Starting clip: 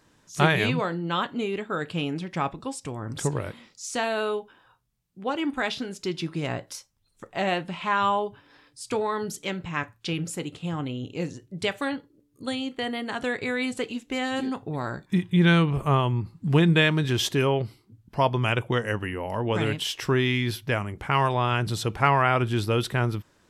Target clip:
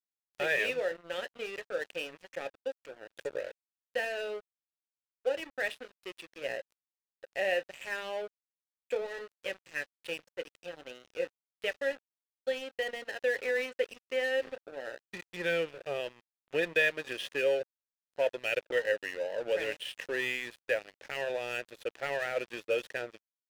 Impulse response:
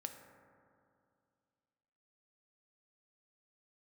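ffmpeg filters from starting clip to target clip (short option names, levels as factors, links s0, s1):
-filter_complex "[0:a]asplit=2[s0][s1];[s1]highpass=f=720:p=1,volume=5.62,asoftclip=type=tanh:threshold=0.631[s2];[s0][s2]amix=inputs=2:normalize=0,lowpass=f=6600:p=1,volume=0.501,asplit=3[s3][s4][s5];[s3]bandpass=f=530:t=q:w=8,volume=1[s6];[s4]bandpass=f=1840:t=q:w=8,volume=0.501[s7];[s5]bandpass=f=2480:t=q:w=8,volume=0.355[s8];[s6][s7][s8]amix=inputs=3:normalize=0,aeval=exprs='sgn(val(0))*max(abs(val(0))-0.0075,0)':c=same"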